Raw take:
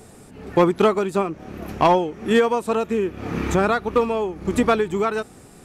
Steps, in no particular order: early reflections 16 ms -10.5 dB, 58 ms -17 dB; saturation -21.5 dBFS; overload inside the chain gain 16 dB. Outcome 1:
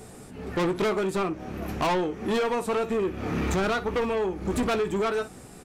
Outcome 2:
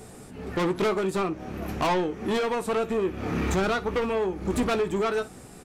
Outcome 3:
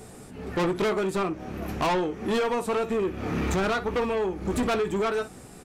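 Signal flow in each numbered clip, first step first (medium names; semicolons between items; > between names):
overload inside the chain > early reflections > saturation; overload inside the chain > saturation > early reflections; early reflections > overload inside the chain > saturation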